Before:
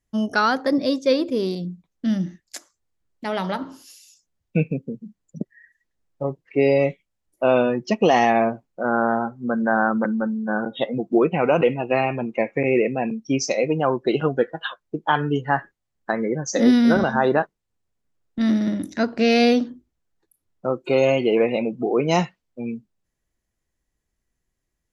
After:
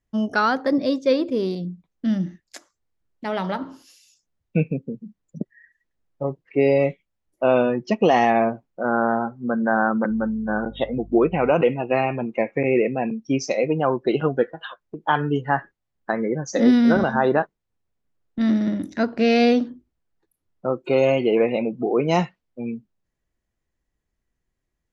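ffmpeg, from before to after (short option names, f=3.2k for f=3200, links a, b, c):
-filter_complex "[0:a]asettb=1/sr,asplit=3[a][b][c];[a]atrim=end=10.104[d];[b]atrim=start=10.1:end=11.51,asetpts=PTS-STARTPTS,afade=t=in:d=0.004:c=qsin,afade=t=out:st=1.406:d=0.004:c=qsin,aeval=exprs='val(0)+0.00891*(sin(2*PI*50*n/s)+sin(2*PI*2*50*n/s)/2+sin(2*PI*3*50*n/s)/3+sin(2*PI*4*50*n/s)/4+sin(2*PI*5*50*n/s)/5)':c=same[e];[c]atrim=start=11.506[f];[d][e]acrossfade=d=0.004:c1=hsin:c2=qsin[g];[g][f]acrossfade=d=0.004:c1=qsin:c2=hsin,asettb=1/sr,asplit=3[h][i][j];[h]atrim=end=14.534[k];[i]atrim=start=14.53:end=15.02,asetpts=PTS-STARTPTS,afade=t=in:d=0.004:c=qsin,afade=t=out:st=0.486:d=0.004:c=qsin,acompressor=threshold=-30dB:ratio=3:attack=3.2:release=140:knee=1:detection=peak[l];[j]atrim=start=15.016[m];[k][l]acrossfade=d=0.004:c1=hsin:c2=qsin[n];[n][m]acrossfade=d=0.004:c1=qsin:c2=hsin,lowpass=f=3.4k:p=1"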